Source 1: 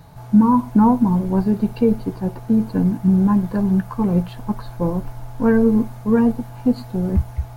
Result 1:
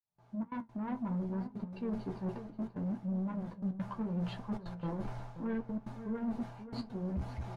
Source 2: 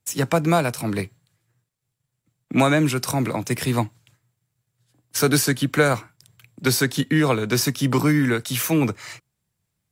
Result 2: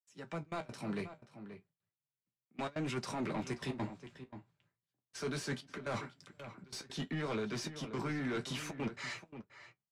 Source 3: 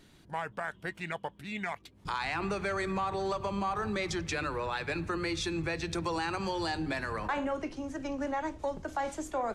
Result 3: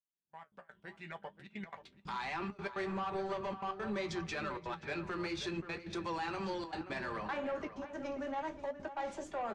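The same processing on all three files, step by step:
fade in at the beginning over 2.34 s
noise gate with hold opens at −51 dBFS
low-shelf EQ 80 Hz −12 dB
comb filter 5.1 ms, depth 35%
reversed playback
downward compressor 16 to 1, threshold −27 dBFS
reversed playback
soft clipping −30 dBFS
gate pattern "xxxxx.x.xxxx" 174 BPM −24 dB
flanger 0.67 Hz, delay 8.4 ms, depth 8.3 ms, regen −47%
high-frequency loss of the air 91 metres
slap from a distant wall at 91 metres, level −11 dB
level +2 dB

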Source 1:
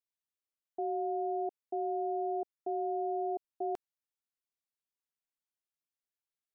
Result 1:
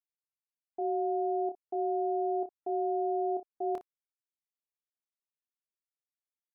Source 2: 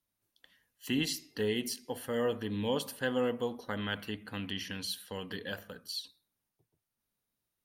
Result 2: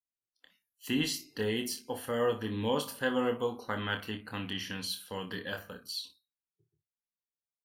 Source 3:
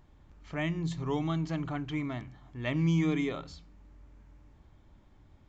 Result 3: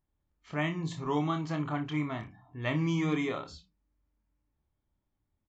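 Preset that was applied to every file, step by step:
noise reduction from a noise print of the clip's start 23 dB
dynamic equaliser 1,100 Hz, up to +5 dB, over −52 dBFS, Q 1.7
ambience of single reflections 27 ms −7 dB, 59 ms −15 dB

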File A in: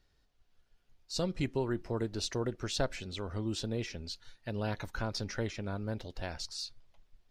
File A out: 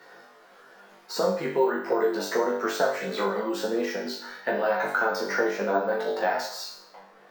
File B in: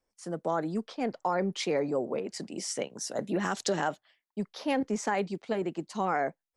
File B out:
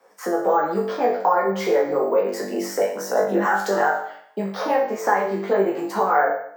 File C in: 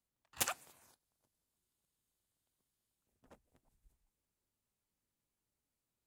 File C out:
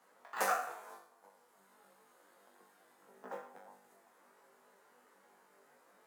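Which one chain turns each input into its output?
notch filter 610 Hz, Q 12
downward compressor 3 to 1, threshold −37 dBFS
elliptic high-pass filter 170 Hz, stop band 40 dB
on a send: flutter between parallel walls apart 3.5 metres, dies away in 0.54 s
on the sum: dynamic equaliser 3,300 Hz, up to −4 dB, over −52 dBFS, Q 1.3
multi-voice chorus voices 2, 0.78 Hz, delay 12 ms, depth 3.7 ms
bad sample-rate conversion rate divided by 2×, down none, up hold
flat-topped bell 890 Hz +12.5 dB 2.5 octaves
multiband upward and downward compressor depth 40%
level +8.5 dB

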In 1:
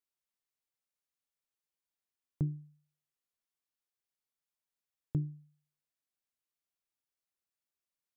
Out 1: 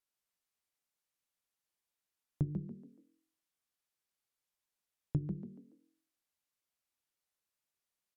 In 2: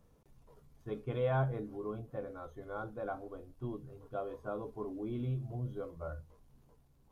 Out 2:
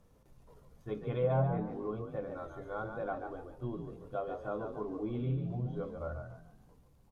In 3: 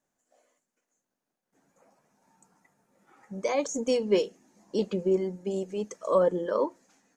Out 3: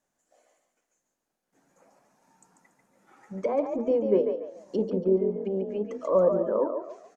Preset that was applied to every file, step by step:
treble cut that deepens with the level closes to 860 Hz, closed at −27 dBFS
mains-hum notches 50/100/150/200/250/300/350/400/450 Hz
echo with shifted repeats 142 ms, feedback 32%, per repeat +43 Hz, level −7 dB
level +2 dB

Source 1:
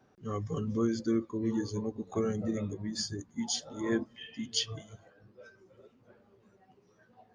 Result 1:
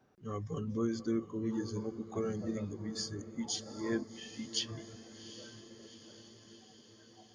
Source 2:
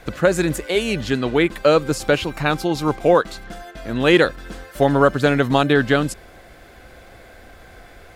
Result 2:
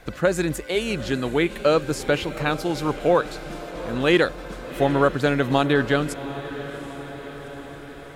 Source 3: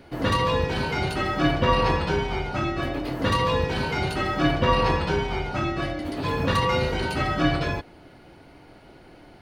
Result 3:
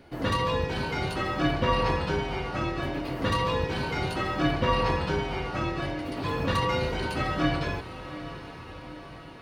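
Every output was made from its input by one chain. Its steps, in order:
feedback delay with all-pass diffusion 778 ms, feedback 63%, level −13.5 dB
level −4 dB

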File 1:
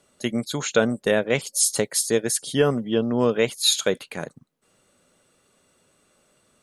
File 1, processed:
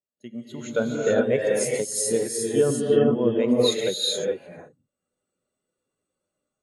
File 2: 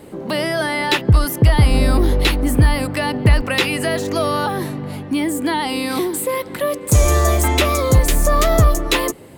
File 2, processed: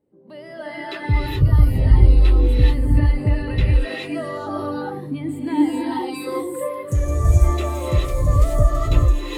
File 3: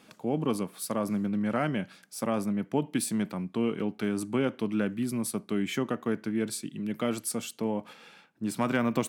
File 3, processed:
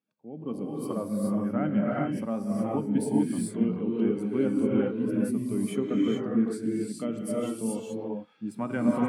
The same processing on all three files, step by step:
automatic gain control gain up to 8 dB
reverb whose tail is shaped and stops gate 460 ms rising, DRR −3.5 dB
every bin expanded away from the loudest bin 1.5 to 1
level −9 dB

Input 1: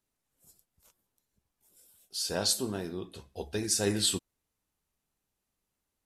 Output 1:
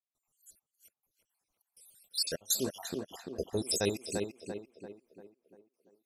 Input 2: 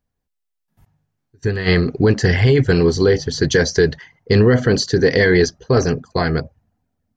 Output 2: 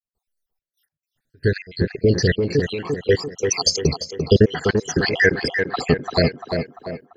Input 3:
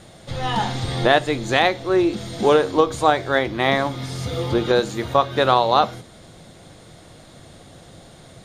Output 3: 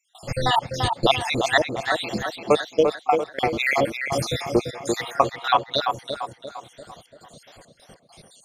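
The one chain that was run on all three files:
time-frequency cells dropped at random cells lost 71%
parametric band 630 Hz +4 dB 0.72 octaves
speech leveller within 3 dB 0.5 s
high-shelf EQ 2,100 Hz +8 dB
gate pattern ".xxx.x.xxxx.xxxx" 102 BPM −24 dB
on a send: tape delay 343 ms, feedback 52%, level −3.5 dB, low-pass 2,100 Hz

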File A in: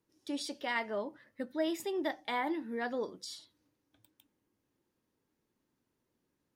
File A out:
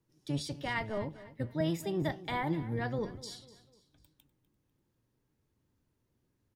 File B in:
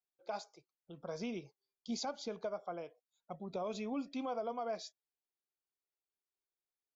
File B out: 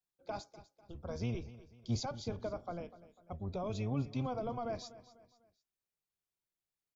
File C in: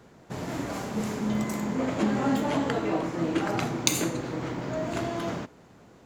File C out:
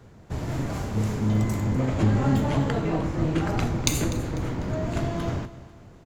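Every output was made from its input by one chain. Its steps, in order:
sub-octave generator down 1 octave, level +2 dB
low-shelf EQ 120 Hz +7 dB
on a send: repeating echo 248 ms, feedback 40%, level −17 dB
on the sum: level −1 dB

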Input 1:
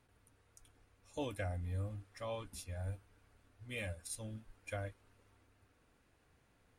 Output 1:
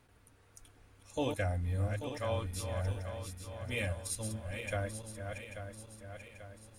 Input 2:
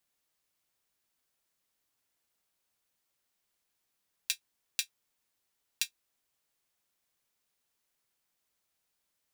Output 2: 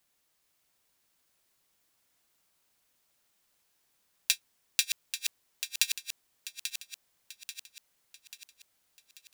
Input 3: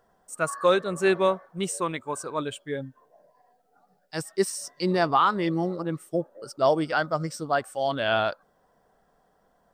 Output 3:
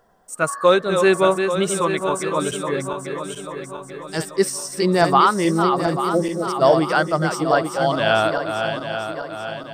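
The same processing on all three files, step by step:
feedback delay that plays each chunk backwards 419 ms, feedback 70%, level −6.5 dB
level +6 dB

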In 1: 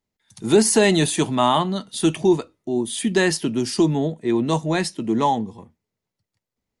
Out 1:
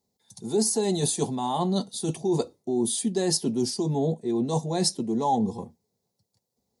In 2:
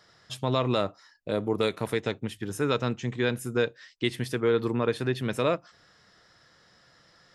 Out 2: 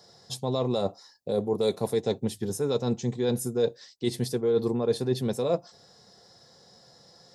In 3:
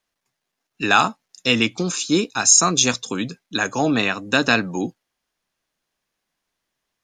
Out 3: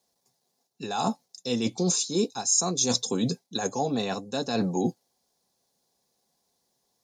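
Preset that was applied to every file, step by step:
reversed playback
downward compressor 16 to 1, threshold −27 dBFS
reversed playback
high-pass filter 170 Hz 6 dB per octave
flat-topped bell 1,900 Hz −14.5 dB
notch comb filter 310 Hz
level +8.5 dB

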